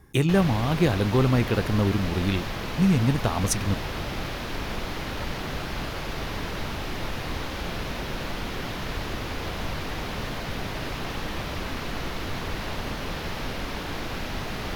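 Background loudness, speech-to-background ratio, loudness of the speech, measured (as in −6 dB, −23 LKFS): −32.0 LKFS, 8.0 dB, −24.0 LKFS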